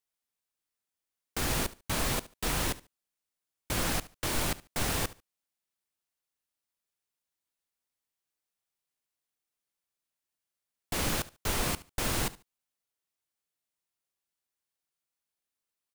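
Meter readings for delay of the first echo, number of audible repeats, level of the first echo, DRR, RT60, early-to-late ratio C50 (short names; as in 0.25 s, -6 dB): 72 ms, 2, -18.5 dB, none, none, none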